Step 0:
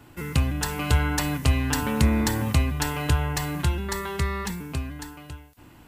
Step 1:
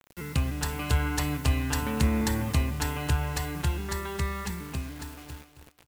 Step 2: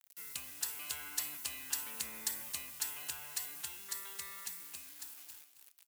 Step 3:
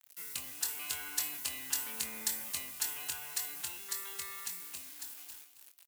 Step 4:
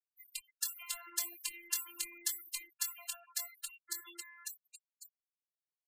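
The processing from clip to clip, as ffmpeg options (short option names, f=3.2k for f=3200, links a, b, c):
-filter_complex "[0:a]acrusher=bits=6:mix=0:aa=0.000001,asplit=2[a][b];[b]aecho=0:1:268|536|804:0.282|0.0535|0.0102[c];[a][c]amix=inputs=2:normalize=0,volume=-4.5dB"
-af "aderivative,volume=-1.5dB"
-filter_complex "[0:a]asplit=2[a][b];[b]adelay=23,volume=-7.5dB[c];[a][c]amix=inputs=2:normalize=0,volume=2.5dB"
-af "afftfilt=real='re*gte(hypot(re,im),0.0126)':imag='im*gte(hypot(re,im),0.0126)':win_size=1024:overlap=0.75,afftfilt=real='hypot(re,im)*cos(PI*b)':imag='0':win_size=512:overlap=0.75,volume=2dB"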